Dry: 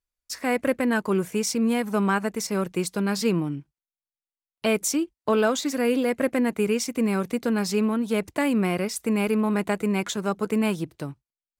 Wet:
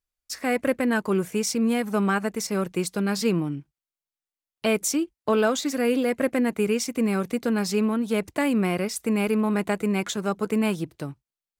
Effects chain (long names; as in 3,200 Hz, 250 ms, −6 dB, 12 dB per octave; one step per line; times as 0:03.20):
notch filter 980 Hz, Q 20